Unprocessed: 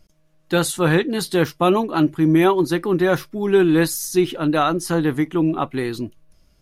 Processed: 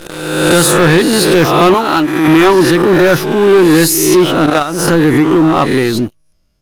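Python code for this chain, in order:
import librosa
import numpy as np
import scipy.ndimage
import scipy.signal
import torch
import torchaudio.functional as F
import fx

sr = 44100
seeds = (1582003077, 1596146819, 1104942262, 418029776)

y = fx.spec_swells(x, sr, rise_s=0.9)
y = fx.highpass(y, sr, hz=700.0, slope=6, at=(1.74, 2.28))
y = fx.level_steps(y, sr, step_db=15, at=(4.46, 4.88))
y = fx.leveller(y, sr, passes=3)
y = fx.pre_swell(y, sr, db_per_s=49.0)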